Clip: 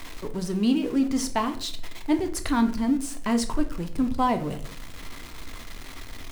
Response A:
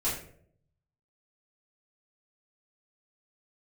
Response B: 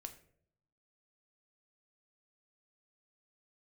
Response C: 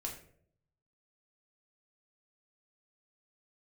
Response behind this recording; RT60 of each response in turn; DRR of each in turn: B; 0.60 s, 0.65 s, 0.60 s; -10.5 dB, 6.5 dB, -0.5 dB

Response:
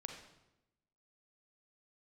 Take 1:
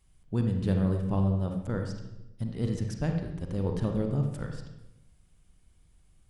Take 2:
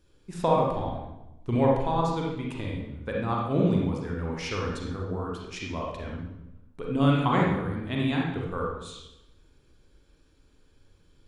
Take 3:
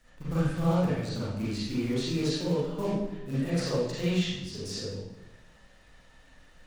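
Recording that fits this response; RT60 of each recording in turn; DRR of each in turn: 1; 0.95 s, 0.95 s, 0.95 s; 3.0 dB, -2.5 dB, -10.5 dB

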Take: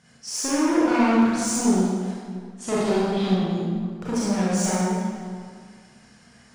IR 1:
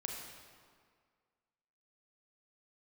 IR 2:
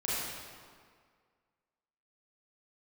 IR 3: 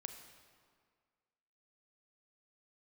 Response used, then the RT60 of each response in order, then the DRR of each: 2; 1.9 s, 1.9 s, 1.9 s; 0.0 dB, -9.0 dB, 6.0 dB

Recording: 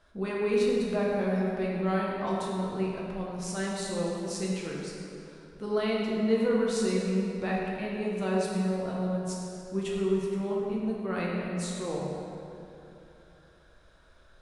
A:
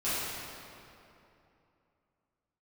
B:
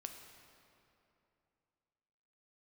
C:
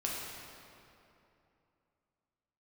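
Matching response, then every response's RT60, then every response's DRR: C; 2.8 s, 2.8 s, 2.8 s; -14.0 dB, 4.0 dB, -4.5 dB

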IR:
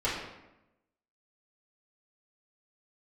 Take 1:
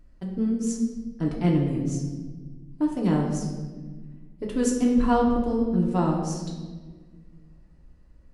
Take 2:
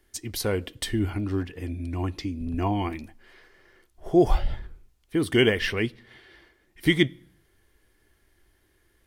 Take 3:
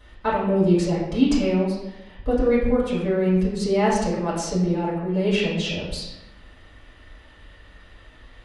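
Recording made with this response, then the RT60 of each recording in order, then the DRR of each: 3; 1.5 s, no single decay rate, 0.95 s; -2.5 dB, 12.5 dB, -9.5 dB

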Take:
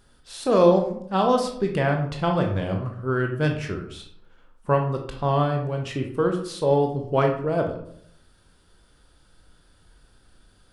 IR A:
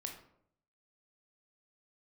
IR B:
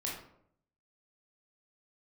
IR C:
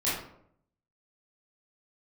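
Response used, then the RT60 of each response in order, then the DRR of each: A; 0.70 s, 0.70 s, 0.70 s; 2.5 dB, -4.0 dB, -10.0 dB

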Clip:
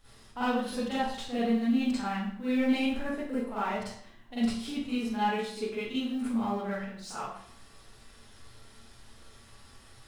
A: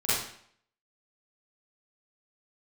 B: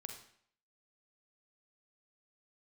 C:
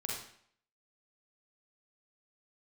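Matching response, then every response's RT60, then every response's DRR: A; 0.60 s, 0.60 s, 0.60 s; -12.5 dB, 4.0 dB, -3.0 dB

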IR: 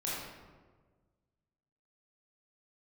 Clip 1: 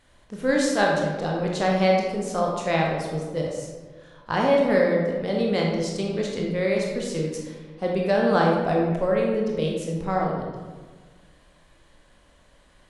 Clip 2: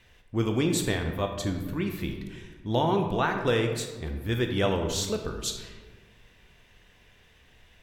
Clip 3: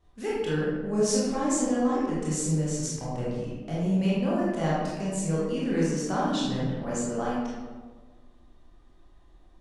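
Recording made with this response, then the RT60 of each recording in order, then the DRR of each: 3; 1.5 s, 1.5 s, 1.5 s; -1.5 dB, 4.5 dB, -7.5 dB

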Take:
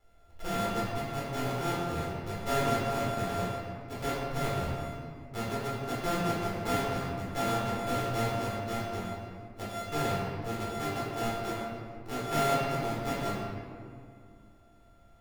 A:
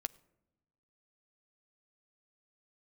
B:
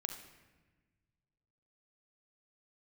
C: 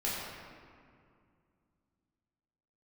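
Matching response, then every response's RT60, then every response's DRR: C; 0.95 s, 1.3 s, 2.3 s; 13.5 dB, 4.0 dB, -7.5 dB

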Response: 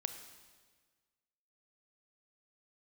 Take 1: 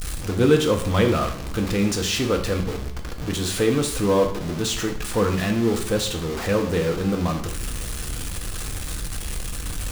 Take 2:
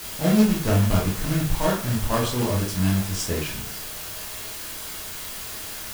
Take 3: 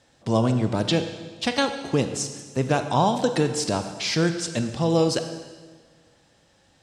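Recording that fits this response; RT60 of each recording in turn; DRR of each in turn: 3; 0.70 s, 0.50 s, 1.5 s; 3.0 dB, -3.5 dB, 7.5 dB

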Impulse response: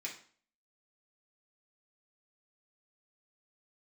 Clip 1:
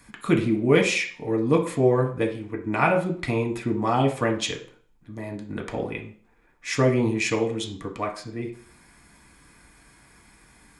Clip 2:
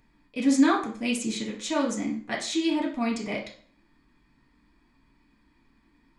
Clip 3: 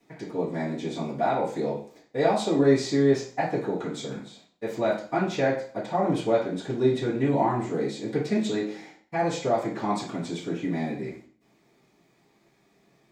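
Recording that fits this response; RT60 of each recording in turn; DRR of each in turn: 2; 0.45 s, 0.45 s, 0.45 s; 1.5 dB, -3.5 dB, -11.0 dB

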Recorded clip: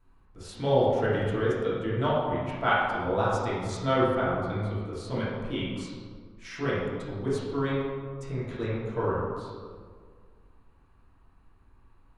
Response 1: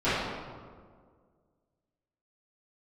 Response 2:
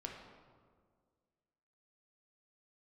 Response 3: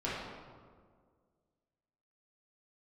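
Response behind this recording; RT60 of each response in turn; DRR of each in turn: 3; 1.8 s, 1.8 s, 1.8 s; -17.5 dB, 0.0 dB, -9.0 dB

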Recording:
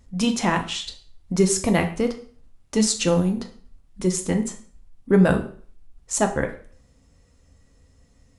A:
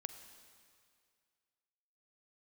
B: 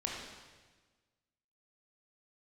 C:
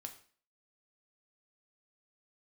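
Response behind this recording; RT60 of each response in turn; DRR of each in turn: C; 2.2 s, 1.4 s, 0.45 s; 9.0 dB, -2.5 dB, 4.5 dB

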